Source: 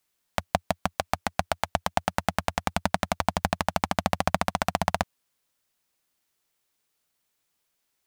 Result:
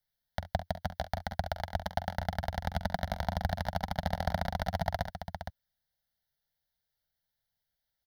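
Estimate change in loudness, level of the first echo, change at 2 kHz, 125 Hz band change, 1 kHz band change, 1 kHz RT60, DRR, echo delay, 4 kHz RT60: -7.0 dB, -12.0 dB, -8.0 dB, -1.0 dB, -8.0 dB, no reverb, no reverb, 45 ms, no reverb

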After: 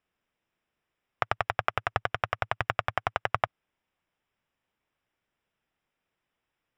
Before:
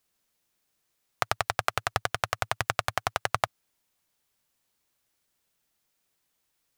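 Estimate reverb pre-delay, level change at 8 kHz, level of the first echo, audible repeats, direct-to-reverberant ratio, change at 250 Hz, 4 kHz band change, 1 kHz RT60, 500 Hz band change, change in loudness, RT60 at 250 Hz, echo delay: no reverb, under -15 dB, no echo, no echo, no reverb, 0.0 dB, -5.5 dB, no reverb, 0.0 dB, -1.0 dB, no reverb, no echo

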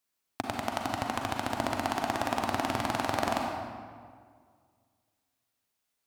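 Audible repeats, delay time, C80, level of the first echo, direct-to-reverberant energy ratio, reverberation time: no echo, no echo, 3.0 dB, no echo, 0.5 dB, 2.0 s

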